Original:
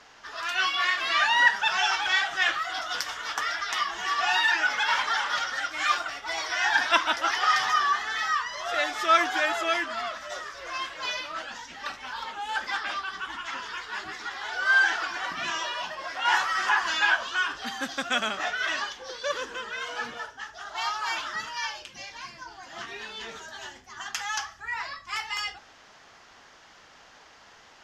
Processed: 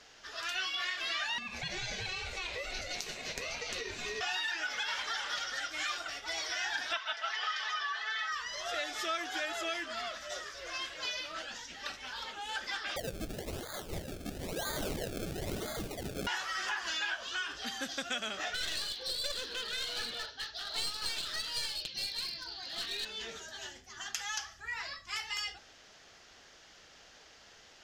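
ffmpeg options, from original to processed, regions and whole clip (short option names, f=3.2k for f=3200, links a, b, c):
-filter_complex "[0:a]asettb=1/sr,asplit=3[a][b][c];[a]atrim=end=1.384[d];[b]atrim=start=1.38:end=4.21,asetpts=PTS-STARTPTS,afade=t=in:d=0.004:c=qsin,afade=t=out:st=2.826:d=0.004:c=qsin,aeval=exprs='val(0)*sin(2*PI*730*n/s)':c=same,acompressor=threshold=-28dB:ratio=12:attack=3.2:release=140:knee=1:detection=peak[e];[c]atrim=start=4.206[f];[d][e]acrossfade=d=0.004:c1=hsin:c2=qsin[g];[g][f]acrossfade=d=0.004:c1=qsin:c2=hsin,asettb=1/sr,asplit=3[h][i][j];[h]atrim=end=6.934[k];[i]atrim=start=6.93:end=8.32,asetpts=PTS-STARTPTS,afade=t=in:d=0.004:c=qsin,afade=t=out:st=1.386:d=0.004:c=qsin,highpass=730,lowpass=3.7k,aecho=1:1:4.6:0.87,atrim=end_sample=61299[l];[j]atrim=start=8.316[m];[k][l]acrossfade=d=0.004:c1=hsin:c2=qsin[n];[n][m]acrossfade=d=0.004:c1=qsin:c2=hsin,asettb=1/sr,asplit=3[o][p][q];[o]atrim=end=12.964[r];[p]atrim=start=12.96:end=16.27,asetpts=PTS-STARTPTS,afade=t=in:d=0.004:c=qsin,afade=t=out:st=3.306:d=0.004:c=qsin,lowpass=f=2.6k:t=q:w=0.5098,lowpass=f=2.6k:t=q:w=0.6013,lowpass=f=2.6k:t=q:w=0.9,lowpass=f=2.6k:t=q:w=2.563,afreqshift=-3100,acrusher=samples=31:mix=1:aa=0.000001:lfo=1:lforange=31:lforate=1,aeval=exprs='0.0631*(abs(mod(val(0)/0.0631+3,4)-2)-1)':c=same[s];[q]atrim=start=16.266[t];[r][s]acrossfade=d=0.004:c1=hsin:c2=qsin[u];[u][t]acrossfade=d=0.004:c1=qsin:c2=hsin,asettb=1/sr,asplit=3[v][w][x];[v]atrim=end=18.544[y];[w]atrim=start=18.54:end=23.05,asetpts=PTS-STARTPTS,afade=t=in:d=0.004:c=qsin,afade=t=out:st=4.506:d=0.004:c=qsin,lowpass=f=4.2k:t=q:w=9.5,aeval=exprs='clip(val(0),-1,0.0224)':c=same[z];[x]atrim=start=23.046[aa];[y][z]acrossfade=d=0.004:c1=hsin:c2=qsin[ab];[ab][aa]acrossfade=d=0.004:c1=qsin:c2=hsin,equalizer=f=125:t=o:w=1:g=-3,equalizer=f=250:t=o:w=1:g=-4,equalizer=f=1k:t=o:w=1:g=-11,equalizer=f=2k:t=o:w=1:g=-3,acompressor=threshold=-33dB:ratio=4"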